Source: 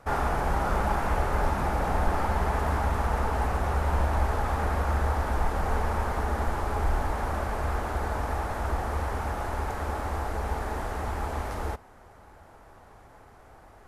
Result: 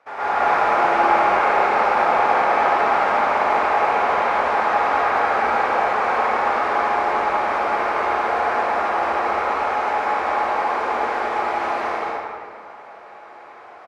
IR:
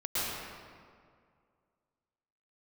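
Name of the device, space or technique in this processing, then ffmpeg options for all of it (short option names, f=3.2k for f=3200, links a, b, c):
station announcement: -filter_complex "[0:a]highpass=490,lowpass=4.3k,equalizer=f=2.3k:t=o:w=0.34:g=6,aecho=1:1:75.8|154.5|212.8|285.7:0.355|0.355|0.891|0.794[a];[1:a]atrim=start_sample=2205[b];[a][b]afir=irnorm=-1:irlink=0"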